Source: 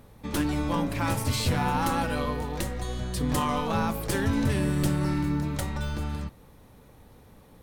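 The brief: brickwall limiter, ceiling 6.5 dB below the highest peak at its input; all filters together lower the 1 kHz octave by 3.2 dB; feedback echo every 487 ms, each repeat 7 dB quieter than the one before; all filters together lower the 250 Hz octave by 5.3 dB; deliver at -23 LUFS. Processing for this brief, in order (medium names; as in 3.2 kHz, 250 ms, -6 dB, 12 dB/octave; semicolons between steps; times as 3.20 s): peaking EQ 250 Hz -7 dB; peaking EQ 1 kHz -3.5 dB; peak limiter -22.5 dBFS; feedback delay 487 ms, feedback 45%, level -7 dB; trim +9 dB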